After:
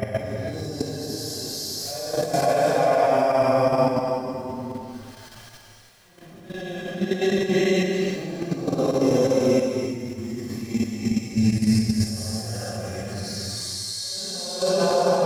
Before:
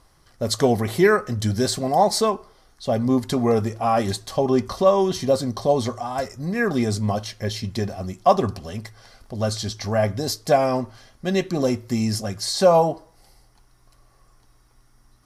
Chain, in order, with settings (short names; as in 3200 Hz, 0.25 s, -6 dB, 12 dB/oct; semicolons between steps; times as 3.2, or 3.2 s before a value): short-time reversal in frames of 0.183 s; low shelf 64 Hz -7 dB; in parallel at -2.5 dB: compressor 10:1, threshold -34 dBFS, peak gain reduction 20.5 dB; on the sum: sample gate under -45.5 dBFS; Paulstretch 5.8×, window 0.10 s, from 10.07; level quantiser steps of 12 dB; non-linear reverb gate 0.35 s rising, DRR 3.5 dB; gain +3.5 dB